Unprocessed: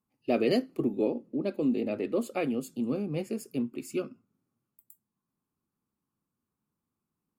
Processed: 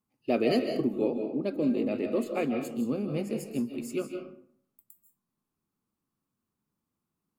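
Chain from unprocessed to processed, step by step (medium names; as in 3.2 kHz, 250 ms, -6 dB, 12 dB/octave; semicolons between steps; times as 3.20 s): 2.24–2.65 s: peaking EQ 9.9 kHz -12 dB 1 oct; reverberation RT60 0.60 s, pre-delay 115 ms, DRR 5 dB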